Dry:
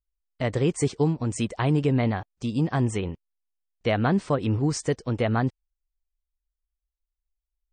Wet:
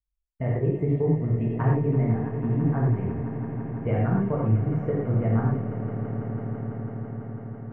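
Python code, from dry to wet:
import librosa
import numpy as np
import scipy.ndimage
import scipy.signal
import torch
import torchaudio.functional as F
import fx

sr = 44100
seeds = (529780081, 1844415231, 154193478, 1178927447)

p1 = fx.envelope_sharpen(x, sr, power=1.5)
p2 = scipy.signal.sosfilt(scipy.signal.cheby2(4, 40, 4400.0, 'lowpass', fs=sr, output='sos'), p1)
p3 = fx.peak_eq(p2, sr, hz=91.0, db=12.5, octaves=2.0)
p4 = fx.transient(p3, sr, attack_db=7, sustain_db=1)
p5 = fx.comb_fb(p4, sr, f0_hz=230.0, decay_s=1.2, harmonics='all', damping=0.0, mix_pct=70)
p6 = p5 + fx.echo_swell(p5, sr, ms=166, loudest=5, wet_db=-14.5, dry=0)
p7 = fx.rev_gated(p6, sr, seeds[0], gate_ms=140, shape='flat', drr_db=-4.5)
y = p7 * 10.0 ** (-3.5 / 20.0)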